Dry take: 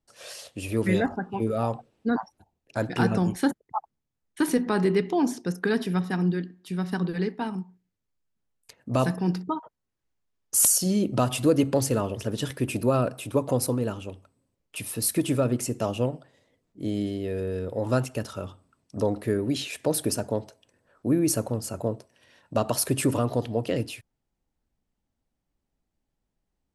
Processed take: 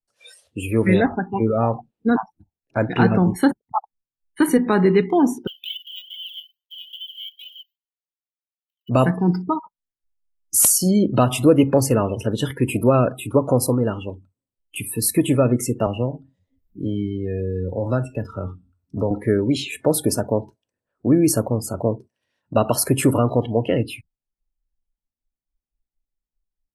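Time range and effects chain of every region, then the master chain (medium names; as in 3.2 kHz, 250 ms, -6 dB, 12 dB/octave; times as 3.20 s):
5.47–8.89 s: dead-time distortion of 0.16 ms + decimation with a swept rate 38×, swing 60% 2.4 Hz + ladder high-pass 3 kHz, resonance 90%
15.86–19.11 s: bass shelf 120 Hz +7.5 dB + feedback comb 90 Hz, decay 0.5 s, mix 50% + three bands compressed up and down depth 40%
whole clip: dynamic bell 5.9 kHz, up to -4 dB, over -44 dBFS, Q 0.71; spectral noise reduction 24 dB; trim +7 dB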